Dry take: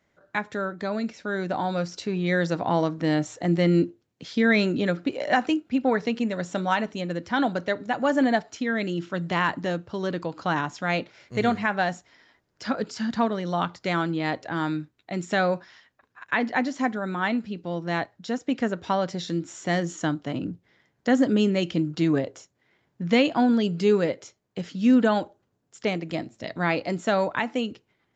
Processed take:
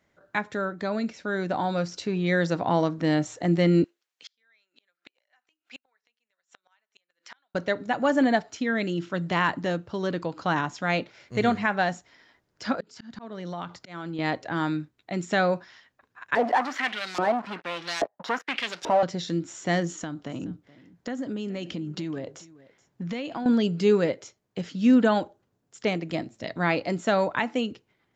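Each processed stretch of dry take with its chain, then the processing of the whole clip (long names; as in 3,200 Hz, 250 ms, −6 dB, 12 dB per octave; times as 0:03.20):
0:03.84–0:07.55: high-pass filter 1,300 Hz + gate with flip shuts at −30 dBFS, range −40 dB
0:12.80–0:14.19: volume swells 451 ms + downward compressor 5 to 1, threshold −30 dBFS
0:16.35–0:19.03: leveller curve on the samples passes 5 + auto-filter band-pass saw up 1.2 Hz 470–6,300 Hz + multiband upward and downward compressor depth 40%
0:19.87–0:23.46: downward compressor, threshold −29 dBFS + single-tap delay 424 ms −20 dB
whole clip: no processing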